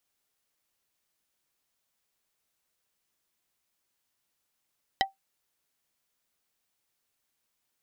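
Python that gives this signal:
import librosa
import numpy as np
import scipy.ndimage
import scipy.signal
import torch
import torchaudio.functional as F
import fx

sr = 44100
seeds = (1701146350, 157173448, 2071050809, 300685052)

y = fx.strike_wood(sr, length_s=0.45, level_db=-18.5, body='plate', hz=778.0, decay_s=0.15, tilt_db=1, modes=5)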